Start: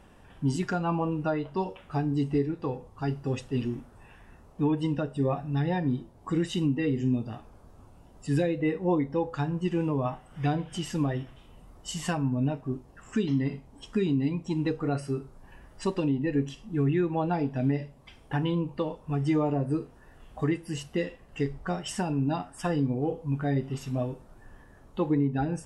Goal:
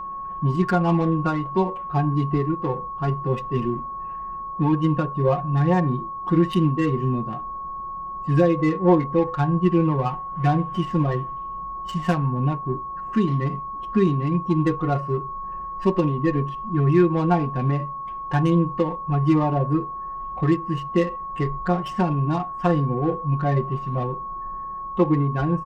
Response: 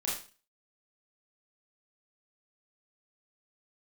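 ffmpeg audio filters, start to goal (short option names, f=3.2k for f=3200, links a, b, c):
-af "adynamicsmooth=sensitivity=4.5:basefreq=1.2k,aecho=1:1:5.6:0.84,aeval=exprs='val(0)+0.02*sin(2*PI*1100*n/s)':c=same,volume=4.5dB"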